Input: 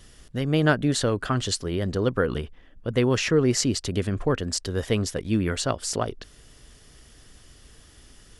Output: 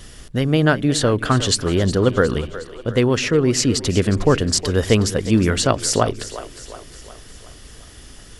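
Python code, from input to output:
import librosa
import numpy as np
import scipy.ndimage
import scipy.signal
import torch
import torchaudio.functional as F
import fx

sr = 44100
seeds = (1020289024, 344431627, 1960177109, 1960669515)

y = fx.rider(x, sr, range_db=4, speed_s=0.5)
y = fx.echo_split(y, sr, split_hz=320.0, low_ms=89, high_ms=362, feedback_pct=52, wet_db=-14.0)
y = y * 10.0 ** (7.0 / 20.0)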